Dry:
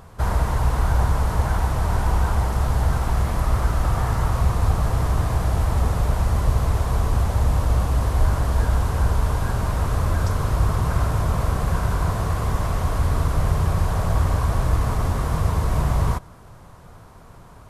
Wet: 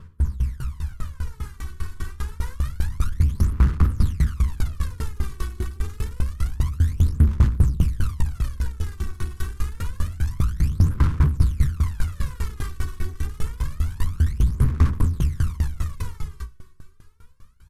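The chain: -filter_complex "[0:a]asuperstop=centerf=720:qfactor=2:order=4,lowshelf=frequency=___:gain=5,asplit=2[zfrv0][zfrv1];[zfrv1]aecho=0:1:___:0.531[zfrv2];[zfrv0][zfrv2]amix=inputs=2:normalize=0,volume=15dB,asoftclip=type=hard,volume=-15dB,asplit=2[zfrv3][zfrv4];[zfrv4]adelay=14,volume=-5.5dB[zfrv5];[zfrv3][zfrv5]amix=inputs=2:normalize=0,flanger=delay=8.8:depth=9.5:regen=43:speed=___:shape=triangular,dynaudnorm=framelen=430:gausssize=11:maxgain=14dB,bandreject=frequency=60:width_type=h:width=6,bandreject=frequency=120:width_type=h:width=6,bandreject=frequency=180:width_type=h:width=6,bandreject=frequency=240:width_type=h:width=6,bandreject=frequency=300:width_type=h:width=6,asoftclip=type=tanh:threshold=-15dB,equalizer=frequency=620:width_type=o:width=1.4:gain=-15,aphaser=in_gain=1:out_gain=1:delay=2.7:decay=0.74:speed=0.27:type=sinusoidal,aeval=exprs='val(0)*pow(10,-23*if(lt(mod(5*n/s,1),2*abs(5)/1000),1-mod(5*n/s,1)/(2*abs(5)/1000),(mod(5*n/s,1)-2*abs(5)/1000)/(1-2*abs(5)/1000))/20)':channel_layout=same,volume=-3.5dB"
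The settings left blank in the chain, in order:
120, 259, 1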